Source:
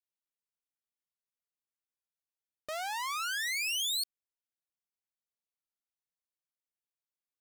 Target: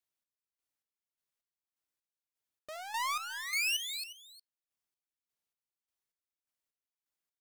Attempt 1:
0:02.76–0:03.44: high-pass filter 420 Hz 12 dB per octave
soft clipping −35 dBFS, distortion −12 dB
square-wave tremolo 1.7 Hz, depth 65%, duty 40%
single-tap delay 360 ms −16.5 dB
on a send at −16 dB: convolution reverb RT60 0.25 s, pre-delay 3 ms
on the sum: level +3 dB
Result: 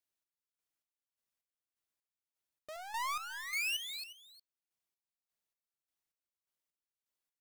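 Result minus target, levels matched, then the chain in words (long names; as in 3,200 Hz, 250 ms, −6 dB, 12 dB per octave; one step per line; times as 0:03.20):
soft clipping: distortion +12 dB
0:02.76–0:03.44: high-pass filter 420 Hz 12 dB per octave
soft clipping −26.5 dBFS, distortion −24 dB
square-wave tremolo 1.7 Hz, depth 65%, duty 40%
single-tap delay 360 ms −16.5 dB
on a send at −16 dB: convolution reverb RT60 0.25 s, pre-delay 3 ms
on the sum: level +3 dB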